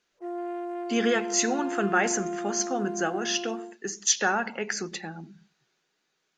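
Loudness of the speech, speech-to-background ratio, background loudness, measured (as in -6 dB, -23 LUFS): -27.5 LUFS, 7.0 dB, -34.5 LUFS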